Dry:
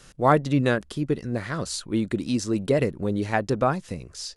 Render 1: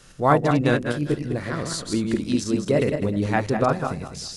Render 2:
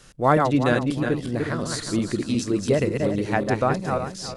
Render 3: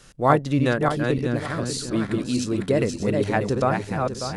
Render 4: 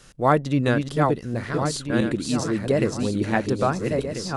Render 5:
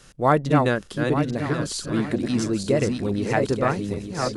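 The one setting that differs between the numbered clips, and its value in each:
feedback delay that plays each chunk backwards, delay time: 102, 181, 296, 670, 439 milliseconds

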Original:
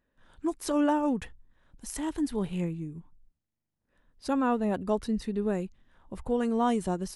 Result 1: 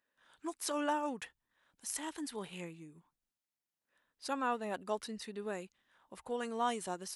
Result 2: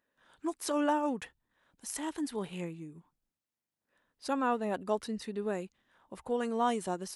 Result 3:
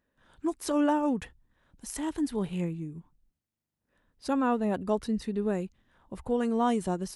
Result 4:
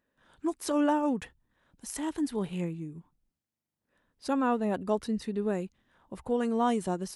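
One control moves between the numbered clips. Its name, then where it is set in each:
high-pass filter, corner frequency: 1,300, 510, 52, 150 Hertz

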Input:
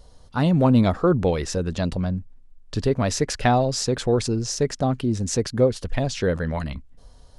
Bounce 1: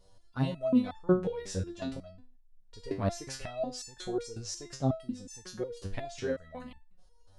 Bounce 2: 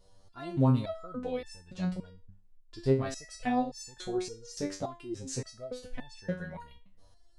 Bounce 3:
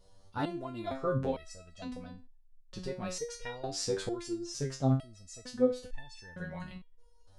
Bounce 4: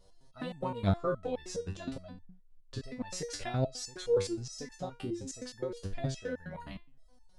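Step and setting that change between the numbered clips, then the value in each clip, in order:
step-sequenced resonator, speed: 5.5, 3.5, 2.2, 9.6 Hertz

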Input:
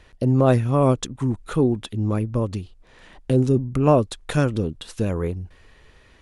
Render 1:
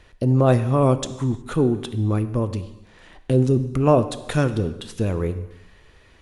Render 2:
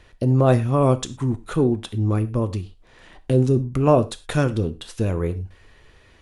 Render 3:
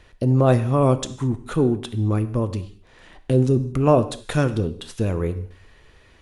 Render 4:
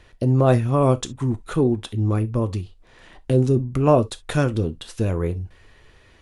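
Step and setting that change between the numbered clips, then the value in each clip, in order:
reverb whose tail is shaped and stops, gate: 390, 140, 250, 90 milliseconds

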